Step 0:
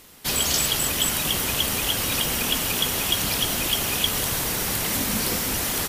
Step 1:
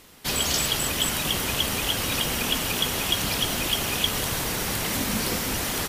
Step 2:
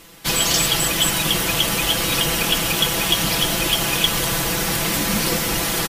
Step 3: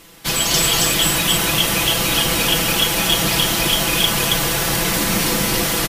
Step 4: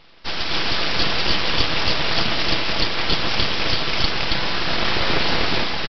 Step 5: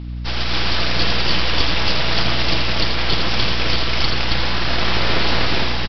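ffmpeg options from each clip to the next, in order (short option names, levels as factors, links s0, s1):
-af "highshelf=f=7400:g=-6"
-af "aecho=1:1:6:0.72,aeval=exprs='0.398*(cos(1*acos(clip(val(0)/0.398,-1,1)))-cos(1*PI/2))+0.0112*(cos(3*acos(clip(val(0)/0.398,-1,1)))-cos(3*PI/2))':c=same,volume=1.78"
-af "aecho=1:1:34.99|274.1:0.316|0.794"
-af "dynaudnorm=f=110:g=7:m=3.76,aresample=11025,aeval=exprs='abs(val(0))':c=same,aresample=44100,volume=0.841"
-filter_complex "[0:a]aeval=exprs='val(0)+0.0398*(sin(2*PI*60*n/s)+sin(2*PI*2*60*n/s)/2+sin(2*PI*3*60*n/s)/3+sin(2*PI*4*60*n/s)/4+sin(2*PI*5*60*n/s)/5)':c=same,asplit=2[s0][s1];[s1]aecho=0:1:82:0.501[s2];[s0][s2]amix=inputs=2:normalize=0"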